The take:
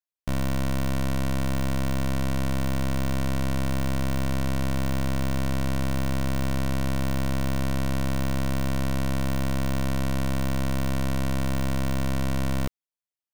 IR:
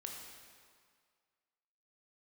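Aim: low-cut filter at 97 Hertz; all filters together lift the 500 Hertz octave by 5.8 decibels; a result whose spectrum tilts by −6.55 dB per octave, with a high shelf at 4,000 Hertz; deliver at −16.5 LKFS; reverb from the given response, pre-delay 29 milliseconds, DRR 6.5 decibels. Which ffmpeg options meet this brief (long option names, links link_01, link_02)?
-filter_complex "[0:a]highpass=97,equalizer=frequency=500:width_type=o:gain=7.5,highshelf=frequency=4000:gain=-8,asplit=2[link_01][link_02];[1:a]atrim=start_sample=2205,adelay=29[link_03];[link_02][link_03]afir=irnorm=-1:irlink=0,volume=-4dB[link_04];[link_01][link_04]amix=inputs=2:normalize=0,volume=10dB"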